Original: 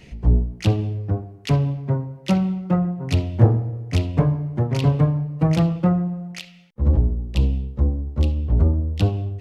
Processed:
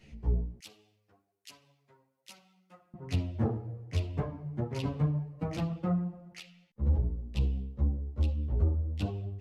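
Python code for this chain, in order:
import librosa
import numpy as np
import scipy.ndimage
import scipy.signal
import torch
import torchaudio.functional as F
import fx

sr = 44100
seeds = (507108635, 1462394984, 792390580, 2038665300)

y = fx.differentiator(x, sr, at=(0.59, 2.94))
y = fx.ensemble(y, sr)
y = y * librosa.db_to_amplitude(-8.5)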